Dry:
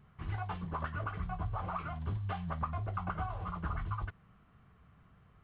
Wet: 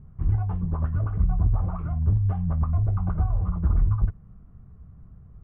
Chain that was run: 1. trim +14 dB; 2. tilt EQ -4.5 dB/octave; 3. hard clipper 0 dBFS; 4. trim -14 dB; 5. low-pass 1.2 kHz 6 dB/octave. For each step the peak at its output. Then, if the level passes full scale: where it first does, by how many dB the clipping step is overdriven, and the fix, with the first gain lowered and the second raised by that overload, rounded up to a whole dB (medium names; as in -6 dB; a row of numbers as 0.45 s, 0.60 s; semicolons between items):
-9.0 dBFS, +5.0 dBFS, 0.0 dBFS, -14.0 dBFS, -14.0 dBFS; step 2, 5.0 dB; step 1 +9 dB, step 4 -9 dB